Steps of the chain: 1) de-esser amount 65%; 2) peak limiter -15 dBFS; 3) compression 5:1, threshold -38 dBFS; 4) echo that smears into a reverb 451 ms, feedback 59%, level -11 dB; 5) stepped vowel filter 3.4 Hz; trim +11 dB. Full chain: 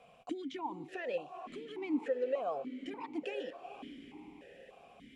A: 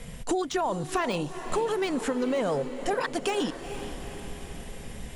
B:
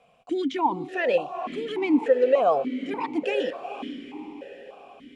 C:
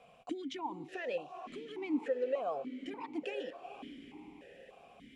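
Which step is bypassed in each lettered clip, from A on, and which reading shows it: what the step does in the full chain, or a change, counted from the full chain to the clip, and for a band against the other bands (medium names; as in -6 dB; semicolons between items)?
5, 4 kHz band +4.5 dB; 3, mean gain reduction 8.0 dB; 1, 4 kHz band +1.5 dB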